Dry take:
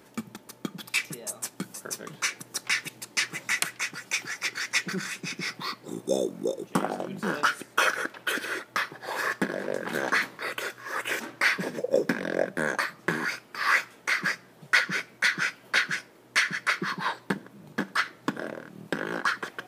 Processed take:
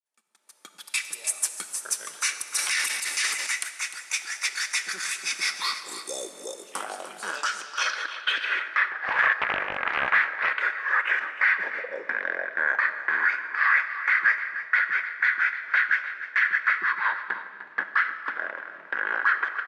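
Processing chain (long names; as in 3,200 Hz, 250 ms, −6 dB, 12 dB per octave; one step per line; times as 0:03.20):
fade in at the beginning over 2.32 s
automatic gain control gain up to 13.5 dB
brickwall limiter −9 dBFS, peak gain reduction 8 dB
Bessel high-pass filter 1,100 Hz, order 2
on a send: single-tap delay 302 ms −13 dB
on the sum: comb and all-pass reverb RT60 1.9 s, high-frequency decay 0.95×, pre-delay 20 ms, DRR 11 dB
low-pass filter sweep 9,800 Hz → 1,800 Hz, 0:07.18–0:08.92
0:02.55–0:03.47: transient designer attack −3 dB, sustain +11 dB
0:08.90–0:10.62: highs frequency-modulated by the lows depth 0.41 ms
level −6 dB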